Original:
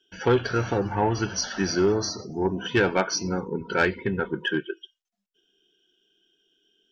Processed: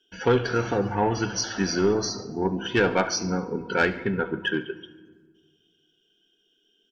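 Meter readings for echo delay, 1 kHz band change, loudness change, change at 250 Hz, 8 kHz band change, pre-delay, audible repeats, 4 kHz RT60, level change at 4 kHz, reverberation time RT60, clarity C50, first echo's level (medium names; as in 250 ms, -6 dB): 72 ms, +0.5 dB, 0.0 dB, +0.5 dB, no reading, 4 ms, 2, 0.80 s, 0.0 dB, 1.5 s, 13.5 dB, -18.5 dB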